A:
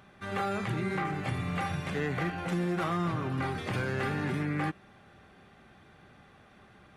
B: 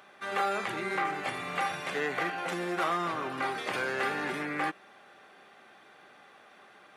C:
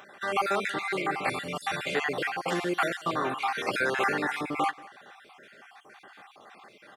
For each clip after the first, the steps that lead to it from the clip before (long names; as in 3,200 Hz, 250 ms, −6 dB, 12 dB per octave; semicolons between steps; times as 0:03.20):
high-pass filter 440 Hz 12 dB per octave; level +4 dB
time-frequency cells dropped at random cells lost 42%; single-tap delay 184 ms −21.5 dB; level +6 dB